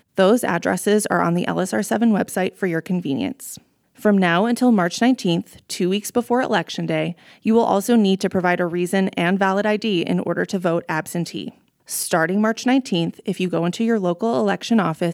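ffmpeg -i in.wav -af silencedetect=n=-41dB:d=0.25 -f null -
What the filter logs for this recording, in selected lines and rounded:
silence_start: 3.58
silence_end: 3.98 | silence_duration: 0.40
silence_start: 11.51
silence_end: 11.88 | silence_duration: 0.37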